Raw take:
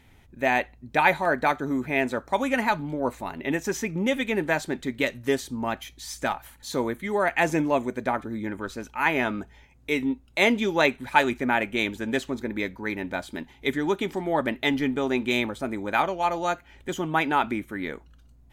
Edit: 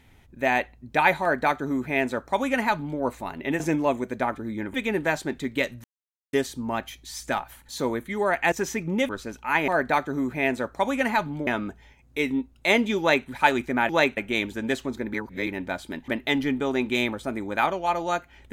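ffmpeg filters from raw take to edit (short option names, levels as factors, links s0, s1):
-filter_complex "[0:a]asplit=13[s0][s1][s2][s3][s4][s5][s6][s7][s8][s9][s10][s11][s12];[s0]atrim=end=3.602[s13];[s1]atrim=start=7.458:end=8.602[s14];[s2]atrim=start=4.168:end=5.27,asetpts=PTS-STARTPTS,afade=t=out:st=1.098:d=0.004:c=hsin,apad=pad_dur=0.49[s15];[s3]atrim=start=5.27:end=7.462,asetpts=PTS-STARTPTS,afade=t=in:d=0.004:c=hsin[s16];[s4]atrim=start=3.598:end=4.172[s17];[s5]atrim=start=8.598:end=9.192[s18];[s6]atrim=start=1.208:end=3.002[s19];[s7]atrim=start=9.188:end=11.612[s20];[s8]atrim=start=10.708:end=10.992[s21];[s9]atrim=start=11.608:end=12.582[s22];[s10]atrim=start=12.578:end=12.912,asetpts=PTS-STARTPTS,areverse[s23];[s11]atrim=start=12.908:end=13.522[s24];[s12]atrim=start=14.438[s25];[s13][s14]acrossfade=d=0.004:c1=hsin:c2=hsin[s26];[s15][s16]concat=n=2:v=0:a=1[s27];[s26][s27]acrossfade=d=0.004:c1=hsin:c2=hsin[s28];[s28][s17]acrossfade=d=0.004:c1=hsin:c2=hsin[s29];[s29][s18]acrossfade=d=0.004:c1=hsin:c2=hsin[s30];[s30][s19]acrossfade=d=0.004:c1=hsin:c2=hsin[s31];[s31][s20]acrossfade=d=0.004:c1=hsin:c2=hsin[s32];[s32][s21]acrossfade=d=0.004:c1=hsin:c2=hsin[s33];[s33][s22]acrossfade=d=0.004:c1=hsin:c2=hsin[s34];[s34][s23]acrossfade=d=0.004:c1=hsin:c2=hsin[s35];[s35][s24]acrossfade=d=0.004:c1=hsin:c2=hsin[s36];[s36][s25]acrossfade=d=0.004:c1=hsin:c2=hsin"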